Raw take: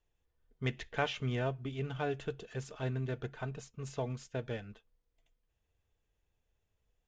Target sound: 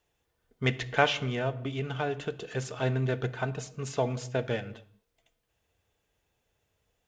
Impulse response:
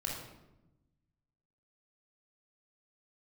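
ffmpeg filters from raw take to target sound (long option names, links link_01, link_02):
-filter_complex "[0:a]highpass=frequency=180:poles=1,asettb=1/sr,asplit=3[link_01][link_02][link_03];[link_01]atrim=end=1.214[link_04];[link_02]atrim=start=1.21:end=2.41,asetpts=PTS-STARTPTS,afade=type=in:duration=0.004:curve=qsin,afade=type=out:start_time=1.196:duration=0.004:curve=qsin,acompressor=threshold=-41dB:ratio=2[link_05];[link_03]atrim=start=2.406[link_06];[link_04][link_05]acrossfade=duration=0.004:curve1=hsin:curve2=qsin[link_07];[link_07][link_06]acrossfade=duration=0.004:curve1=qsin:curve2=hsin,asplit=2[link_08][link_09];[1:a]atrim=start_sample=2205,afade=type=out:start_time=0.32:duration=0.01,atrim=end_sample=14553[link_10];[link_09][link_10]afir=irnorm=-1:irlink=0,volume=-14dB[link_11];[link_08][link_11]amix=inputs=2:normalize=0,volume=8.5dB"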